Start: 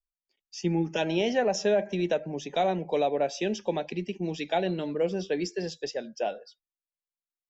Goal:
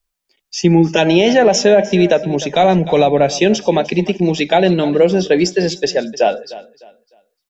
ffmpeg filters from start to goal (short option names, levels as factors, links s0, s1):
-filter_complex "[0:a]asettb=1/sr,asplit=3[s0][s1][s2];[s0]atrim=end=2.314[s3];[s1]atrim=start=2.31:end=3.38,asetpts=PTS-STARTPTS,afade=t=in:d=0.004:c=qsin,afade=t=out:st=1.066:d=0.004:c=qsin,asubboost=boost=10.5:cutoff=190[s4];[s2]atrim=start=3.376[s5];[s3][s4]acrossfade=d=0.004:c1=hsin:c2=qsin[s6];[s6][s5]acrossfade=d=0.004:c1=qsin:c2=hsin,asplit=2[s7][s8];[s8]aecho=0:1:303|606|909:0.126|0.0365|0.0106[s9];[s7][s9]amix=inputs=2:normalize=0,alimiter=level_in=7.5:limit=0.891:release=50:level=0:latency=1,volume=0.891"